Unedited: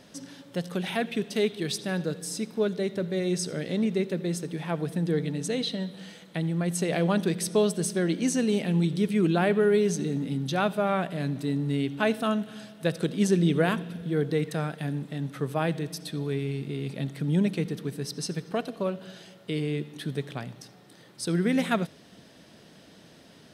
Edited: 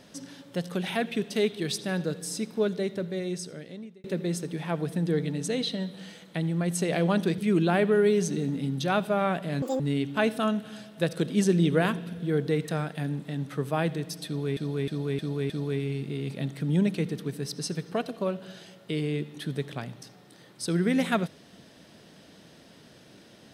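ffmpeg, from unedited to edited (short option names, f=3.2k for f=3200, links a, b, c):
-filter_complex "[0:a]asplit=9[a][b][c][d][e][f][g][h][i];[a]atrim=end=4.04,asetpts=PTS-STARTPTS,afade=t=out:st=2.73:d=1.31[j];[b]atrim=start=4.04:end=7.382,asetpts=PTS-STARTPTS,afade=t=in:d=0.004:c=hsin[k];[c]atrim=start=9.058:end=11.304[l];[d]atrim=start=11.3:end=11.63,asetpts=PTS-STARTPTS,asetrate=82026,aresample=44100,atrim=end_sample=7824,asetpts=PTS-STARTPTS[m];[e]atrim=start=11.626:end=16.402[n];[f]atrim=start=16.088:end=16.402[o];[g]atrim=start=16.088:end=16.402[p];[h]atrim=start=16.088:end=16.402[q];[i]atrim=start=16.088[r];[j][k]concat=n=2:v=0:a=1[s];[s][l]acrossfade=d=0.004:c1=hsin:c2=hsin[t];[t][m]acrossfade=d=0.004:c1=hsin:c2=hsin[u];[u][n]acrossfade=d=0.004:c1=hsin:c2=hsin[v];[v][o]acrossfade=d=0.004:c1=hsin:c2=hsin[w];[w][p]acrossfade=d=0.004:c1=hsin:c2=hsin[x];[x][q]acrossfade=d=0.004:c1=hsin:c2=hsin[y];[y][r]acrossfade=d=0.004:c1=hsin:c2=hsin"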